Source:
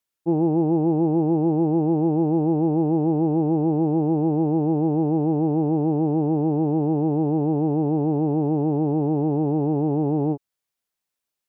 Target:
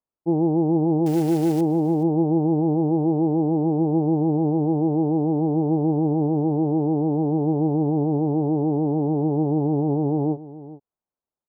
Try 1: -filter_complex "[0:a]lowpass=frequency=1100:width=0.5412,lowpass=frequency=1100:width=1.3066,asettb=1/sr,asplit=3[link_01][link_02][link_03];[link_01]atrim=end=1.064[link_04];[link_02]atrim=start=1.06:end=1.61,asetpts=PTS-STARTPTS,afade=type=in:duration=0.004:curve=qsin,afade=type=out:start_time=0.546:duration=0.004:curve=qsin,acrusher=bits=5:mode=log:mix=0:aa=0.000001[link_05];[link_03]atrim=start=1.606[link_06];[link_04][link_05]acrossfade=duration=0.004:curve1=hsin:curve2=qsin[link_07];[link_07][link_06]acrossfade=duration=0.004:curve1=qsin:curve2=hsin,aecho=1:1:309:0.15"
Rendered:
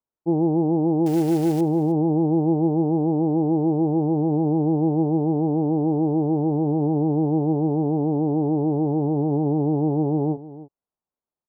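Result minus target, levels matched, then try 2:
echo 114 ms early
-filter_complex "[0:a]lowpass=frequency=1100:width=0.5412,lowpass=frequency=1100:width=1.3066,asettb=1/sr,asplit=3[link_01][link_02][link_03];[link_01]atrim=end=1.064[link_04];[link_02]atrim=start=1.06:end=1.61,asetpts=PTS-STARTPTS,afade=type=in:duration=0.004:curve=qsin,afade=type=out:start_time=0.546:duration=0.004:curve=qsin,acrusher=bits=5:mode=log:mix=0:aa=0.000001[link_05];[link_03]atrim=start=1.606[link_06];[link_04][link_05]acrossfade=duration=0.004:curve1=hsin:curve2=qsin[link_07];[link_07][link_06]acrossfade=duration=0.004:curve1=qsin:curve2=hsin,aecho=1:1:423:0.15"

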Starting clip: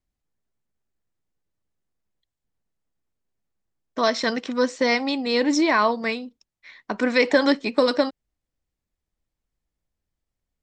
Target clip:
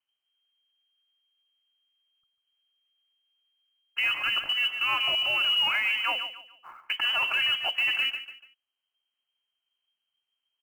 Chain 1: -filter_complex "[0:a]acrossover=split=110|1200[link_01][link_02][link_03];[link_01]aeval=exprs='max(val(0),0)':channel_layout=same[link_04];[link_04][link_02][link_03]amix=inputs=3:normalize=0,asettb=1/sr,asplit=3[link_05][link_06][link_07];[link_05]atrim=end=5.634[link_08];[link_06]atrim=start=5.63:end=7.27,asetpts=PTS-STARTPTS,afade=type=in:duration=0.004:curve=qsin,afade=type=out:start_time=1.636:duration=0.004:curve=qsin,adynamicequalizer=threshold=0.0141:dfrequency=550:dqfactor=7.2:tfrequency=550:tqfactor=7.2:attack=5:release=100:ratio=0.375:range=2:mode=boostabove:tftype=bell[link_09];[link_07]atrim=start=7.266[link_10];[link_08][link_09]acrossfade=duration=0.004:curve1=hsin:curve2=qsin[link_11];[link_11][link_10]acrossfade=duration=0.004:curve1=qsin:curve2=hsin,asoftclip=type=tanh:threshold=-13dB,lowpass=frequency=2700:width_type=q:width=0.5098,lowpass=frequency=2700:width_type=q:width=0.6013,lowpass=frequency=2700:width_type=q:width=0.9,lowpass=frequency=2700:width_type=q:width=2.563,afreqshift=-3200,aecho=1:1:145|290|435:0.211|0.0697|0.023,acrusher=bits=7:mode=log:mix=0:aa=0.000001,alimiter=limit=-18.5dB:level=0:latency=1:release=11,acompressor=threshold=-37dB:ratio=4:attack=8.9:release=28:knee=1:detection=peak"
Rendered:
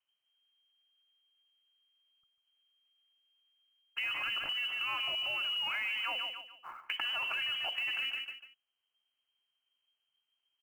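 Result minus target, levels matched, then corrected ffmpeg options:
downward compressor: peak gain reduction +11.5 dB
-filter_complex "[0:a]acrossover=split=110|1200[link_01][link_02][link_03];[link_01]aeval=exprs='max(val(0),0)':channel_layout=same[link_04];[link_04][link_02][link_03]amix=inputs=3:normalize=0,asettb=1/sr,asplit=3[link_05][link_06][link_07];[link_05]atrim=end=5.634[link_08];[link_06]atrim=start=5.63:end=7.27,asetpts=PTS-STARTPTS,afade=type=in:duration=0.004:curve=qsin,afade=type=out:start_time=1.636:duration=0.004:curve=qsin,adynamicequalizer=threshold=0.0141:dfrequency=550:dqfactor=7.2:tfrequency=550:tqfactor=7.2:attack=5:release=100:ratio=0.375:range=2:mode=boostabove:tftype=bell[link_09];[link_07]atrim=start=7.266[link_10];[link_08][link_09]acrossfade=duration=0.004:curve1=hsin:curve2=qsin[link_11];[link_11][link_10]acrossfade=duration=0.004:curve1=qsin:curve2=hsin,asoftclip=type=tanh:threshold=-13dB,lowpass=frequency=2700:width_type=q:width=0.5098,lowpass=frequency=2700:width_type=q:width=0.6013,lowpass=frequency=2700:width_type=q:width=0.9,lowpass=frequency=2700:width_type=q:width=2.563,afreqshift=-3200,aecho=1:1:145|290|435:0.211|0.0697|0.023,acrusher=bits=7:mode=log:mix=0:aa=0.000001,alimiter=limit=-18.5dB:level=0:latency=1:release=11"

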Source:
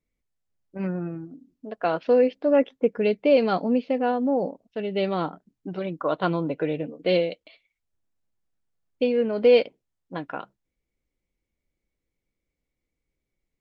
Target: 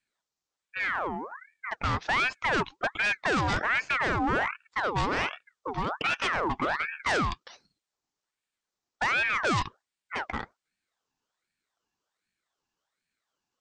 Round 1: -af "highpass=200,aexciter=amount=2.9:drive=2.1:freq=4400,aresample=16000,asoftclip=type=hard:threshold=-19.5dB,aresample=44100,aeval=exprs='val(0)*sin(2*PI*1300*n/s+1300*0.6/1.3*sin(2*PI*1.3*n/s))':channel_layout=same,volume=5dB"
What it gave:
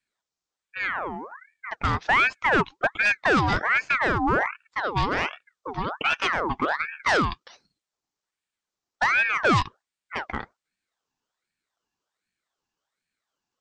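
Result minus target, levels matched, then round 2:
hard clipping: distortion −5 dB
-af "highpass=200,aexciter=amount=2.9:drive=2.1:freq=4400,aresample=16000,asoftclip=type=hard:threshold=-26.5dB,aresample=44100,aeval=exprs='val(0)*sin(2*PI*1300*n/s+1300*0.6/1.3*sin(2*PI*1.3*n/s))':channel_layout=same,volume=5dB"

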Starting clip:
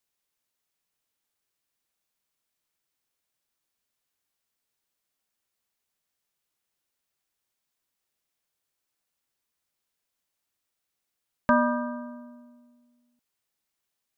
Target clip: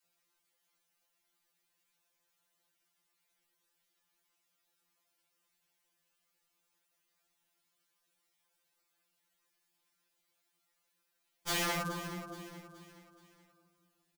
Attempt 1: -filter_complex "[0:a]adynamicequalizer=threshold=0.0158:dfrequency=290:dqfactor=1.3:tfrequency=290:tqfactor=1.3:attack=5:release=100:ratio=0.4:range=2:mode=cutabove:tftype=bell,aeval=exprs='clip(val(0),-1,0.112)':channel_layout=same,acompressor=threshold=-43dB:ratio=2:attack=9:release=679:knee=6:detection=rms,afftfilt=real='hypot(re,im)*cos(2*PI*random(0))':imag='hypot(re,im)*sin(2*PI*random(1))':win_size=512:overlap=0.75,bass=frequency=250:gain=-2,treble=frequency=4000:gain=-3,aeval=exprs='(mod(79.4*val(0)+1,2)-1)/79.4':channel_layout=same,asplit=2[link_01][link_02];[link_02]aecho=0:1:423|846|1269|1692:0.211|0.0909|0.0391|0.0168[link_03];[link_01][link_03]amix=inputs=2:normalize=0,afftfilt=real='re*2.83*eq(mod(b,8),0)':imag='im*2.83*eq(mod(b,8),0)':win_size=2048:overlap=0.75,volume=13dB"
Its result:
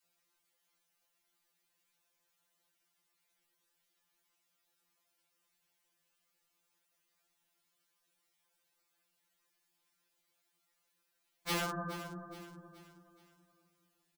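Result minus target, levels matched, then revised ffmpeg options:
downward compressor: peak gain reduction +3.5 dB
-filter_complex "[0:a]adynamicequalizer=threshold=0.0158:dfrequency=290:dqfactor=1.3:tfrequency=290:tqfactor=1.3:attack=5:release=100:ratio=0.4:range=2:mode=cutabove:tftype=bell,aeval=exprs='clip(val(0),-1,0.112)':channel_layout=same,acompressor=threshold=-36dB:ratio=2:attack=9:release=679:knee=6:detection=rms,afftfilt=real='hypot(re,im)*cos(2*PI*random(0))':imag='hypot(re,im)*sin(2*PI*random(1))':win_size=512:overlap=0.75,bass=frequency=250:gain=-2,treble=frequency=4000:gain=-3,aeval=exprs='(mod(79.4*val(0)+1,2)-1)/79.4':channel_layout=same,asplit=2[link_01][link_02];[link_02]aecho=0:1:423|846|1269|1692:0.211|0.0909|0.0391|0.0168[link_03];[link_01][link_03]amix=inputs=2:normalize=0,afftfilt=real='re*2.83*eq(mod(b,8),0)':imag='im*2.83*eq(mod(b,8),0)':win_size=2048:overlap=0.75,volume=13dB"

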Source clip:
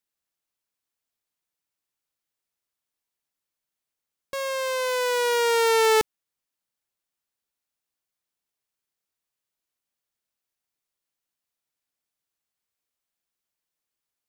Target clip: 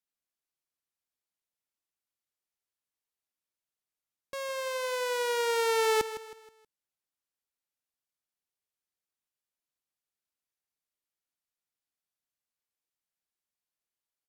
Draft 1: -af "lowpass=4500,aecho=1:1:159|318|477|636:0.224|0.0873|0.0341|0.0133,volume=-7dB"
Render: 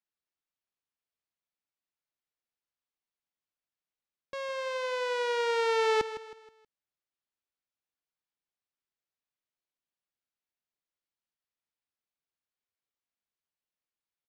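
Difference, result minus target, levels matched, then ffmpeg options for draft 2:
8,000 Hz band −8.5 dB
-af "lowpass=17000,aecho=1:1:159|318|477|636:0.224|0.0873|0.0341|0.0133,volume=-7dB"

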